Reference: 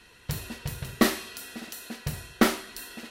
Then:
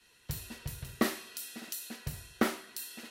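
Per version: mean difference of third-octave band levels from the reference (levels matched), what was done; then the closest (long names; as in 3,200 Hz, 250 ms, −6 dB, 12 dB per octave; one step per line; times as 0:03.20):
3.0 dB: high-shelf EQ 3,400 Hz +7.5 dB
downward compressor 2.5 to 1, threshold −43 dBFS, peak gain reduction 19 dB
multiband upward and downward expander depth 100%
level +1 dB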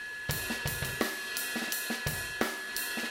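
7.5 dB: low-shelf EQ 240 Hz −10.5 dB
downward compressor 8 to 1, threshold −37 dBFS, peak gain reduction 18.5 dB
steady tone 1,700 Hz −46 dBFS
level +8 dB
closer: first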